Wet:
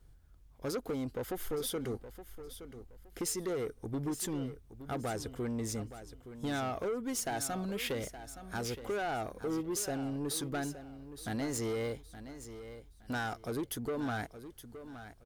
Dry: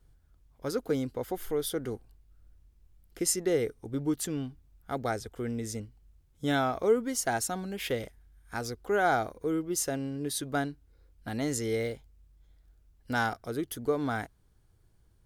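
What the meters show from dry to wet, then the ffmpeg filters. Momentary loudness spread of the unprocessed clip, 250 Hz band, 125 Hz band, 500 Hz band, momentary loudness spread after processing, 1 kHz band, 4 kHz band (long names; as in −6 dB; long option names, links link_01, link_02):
11 LU, −4.0 dB, −3.0 dB, −6.0 dB, 14 LU, −6.5 dB, −3.0 dB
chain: -af "acompressor=threshold=-29dB:ratio=6,asoftclip=type=tanh:threshold=-32.5dB,aecho=1:1:869|1738|2607:0.237|0.0617|0.016,volume=2dB"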